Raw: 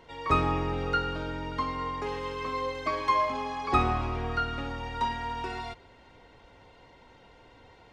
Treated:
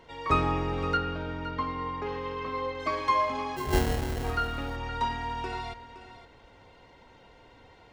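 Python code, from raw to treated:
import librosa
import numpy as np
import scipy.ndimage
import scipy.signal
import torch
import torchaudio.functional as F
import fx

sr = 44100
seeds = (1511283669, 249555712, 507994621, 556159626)

y = fx.air_absorb(x, sr, metres=160.0, at=(0.97, 2.8))
y = fx.sample_hold(y, sr, seeds[0], rate_hz=1200.0, jitter_pct=0, at=(3.56, 4.23), fade=0.02)
y = y + 10.0 ** (-13.5 / 20.0) * np.pad(y, (int(517 * sr / 1000.0), 0))[:len(y)]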